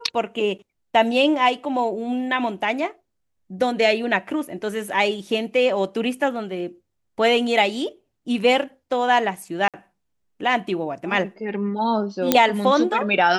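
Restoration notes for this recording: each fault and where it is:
0:09.68–0:09.74: drop-out 57 ms
0:12.32: click 0 dBFS

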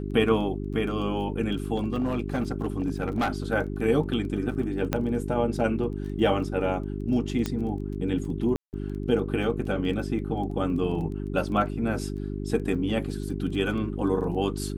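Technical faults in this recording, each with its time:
surface crackle 13 per second −36 dBFS
mains hum 50 Hz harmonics 8 −32 dBFS
0:01.75–0:03.30: clipping −21 dBFS
0:04.93: click −10 dBFS
0:07.46: click −13 dBFS
0:08.56–0:08.73: drop-out 169 ms

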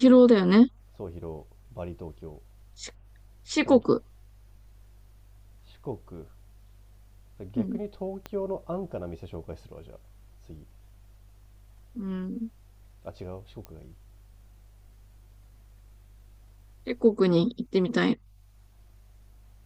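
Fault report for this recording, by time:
0:08.26: click −21 dBFS
0:13.65: click −25 dBFS

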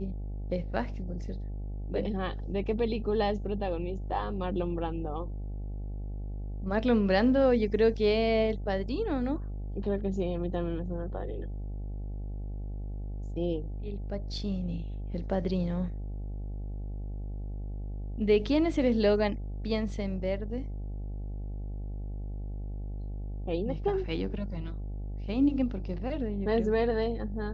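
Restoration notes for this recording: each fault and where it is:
mains buzz 50 Hz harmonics 17 −36 dBFS

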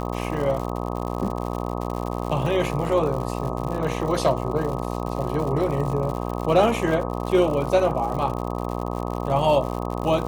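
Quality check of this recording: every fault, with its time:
mains buzz 60 Hz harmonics 21 −28 dBFS
surface crackle 120 per second −29 dBFS

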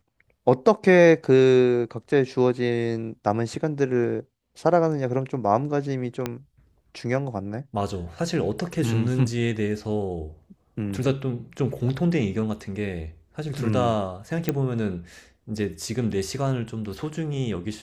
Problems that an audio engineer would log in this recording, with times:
0:06.26: click −12 dBFS
0:14.49: click −9 dBFS

